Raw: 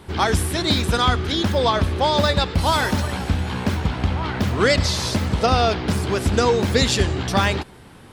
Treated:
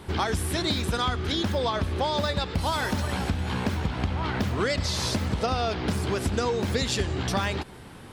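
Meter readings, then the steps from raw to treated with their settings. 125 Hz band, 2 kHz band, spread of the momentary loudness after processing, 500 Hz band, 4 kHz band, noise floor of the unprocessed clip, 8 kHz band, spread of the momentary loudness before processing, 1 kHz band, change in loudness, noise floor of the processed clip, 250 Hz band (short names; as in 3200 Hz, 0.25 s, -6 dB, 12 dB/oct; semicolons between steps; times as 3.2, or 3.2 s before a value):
-6.5 dB, -7.0 dB, 3 LU, -7.5 dB, -7.0 dB, -44 dBFS, -6.0 dB, 6 LU, -7.5 dB, -7.0 dB, -44 dBFS, -6.0 dB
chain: compressor 4:1, threshold -24 dBFS, peak gain reduction 10 dB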